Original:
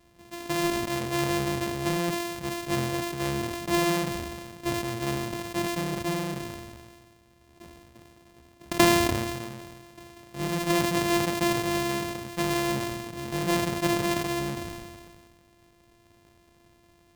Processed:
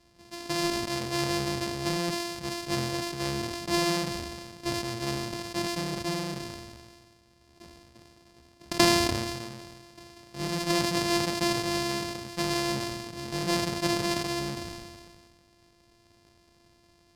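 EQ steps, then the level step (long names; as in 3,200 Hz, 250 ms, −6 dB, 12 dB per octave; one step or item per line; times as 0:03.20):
low-pass filter 11,000 Hz 12 dB per octave
parametric band 4,800 Hz +9 dB 0.44 octaves
high-shelf EQ 8,200 Hz +4 dB
−2.5 dB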